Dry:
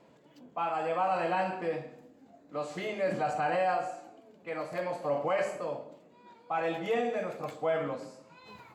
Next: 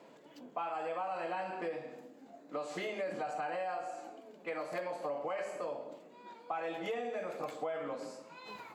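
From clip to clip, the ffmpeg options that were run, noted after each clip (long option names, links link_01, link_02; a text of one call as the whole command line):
ffmpeg -i in.wav -af "highpass=240,acompressor=threshold=-39dB:ratio=6,volume=3.5dB" out.wav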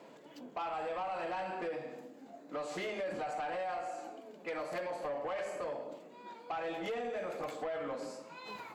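ffmpeg -i in.wav -af "asoftclip=type=tanh:threshold=-34.5dB,volume=2.5dB" out.wav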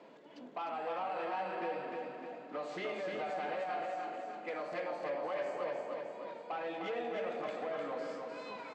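ffmpeg -i in.wav -af "highpass=160,lowpass=4500,aecho=1:1:303|606|909|1212|1515|1818|2121:0.631|0.341|0.184|0.0994|0.0537|0.029|0.0156,volume=-1.5dB" out.wav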